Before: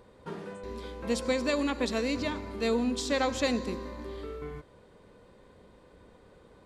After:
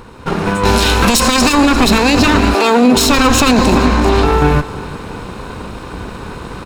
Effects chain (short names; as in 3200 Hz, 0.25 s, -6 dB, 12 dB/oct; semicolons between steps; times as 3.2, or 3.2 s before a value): minimum comb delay 0.75 ms; 0.65–1.53 high shelf 2200 Hz +11.5 dB; 3.77–4.25 LPF 9400 Hz; feedback echo 0.344 s, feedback 42%, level -19 dB; AGC gain up to 10 dB; 2.53–2.96 HPF 400 Hz -> 110 Hz 24 dB/oct; maximiser +22 dB; gain -1 dB